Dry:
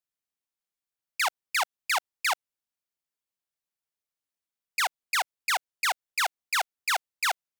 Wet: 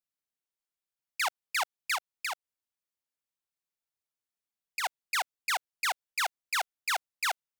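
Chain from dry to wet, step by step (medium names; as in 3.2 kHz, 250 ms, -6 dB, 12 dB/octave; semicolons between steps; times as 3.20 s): 1.95–4.84 s: compression 4:1, threshold -29 dBFS, peak gain reduction 6 dB; trim -3.5 dB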